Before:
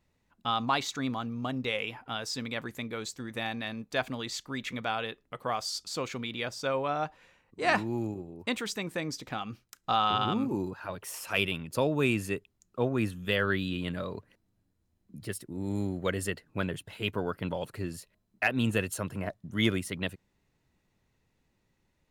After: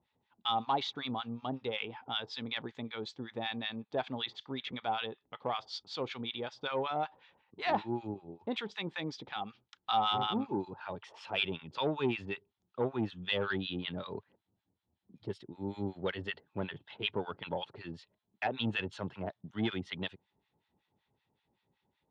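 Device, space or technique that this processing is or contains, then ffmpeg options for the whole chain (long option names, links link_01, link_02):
guitar amplifier with harmonic tremolo: -filter_complex "[0:a]acrossover=split=1000[link_01][link_02];[link_01]aeval=exprs='val(0)*(1-1/2+1/2*cos(2*PI*5.3*n/s))':channel_layout=same[link_03];[link_02]aeval=exprs='val(0)*(1-1/2-1/2*cos(2*PI*5.3*n/s))':channel_layout=same[link_04];[link_03][link_04]amix=inputs=2:normalize=0,asoftclip=type=tanh:threshold=-23.5dB,highpass=89,equalizer=frequency=400:width_type=q:width=4:gain=4,equalizer=frequency=850:width_type=q:width=4:gain=10,equalizer=frequency=3400:width_type=q:width=4:gain=9,lowpass=frequency=4400:width=0.5412,lowpass=frequency=4400:width=1.3066,volume=-1dB"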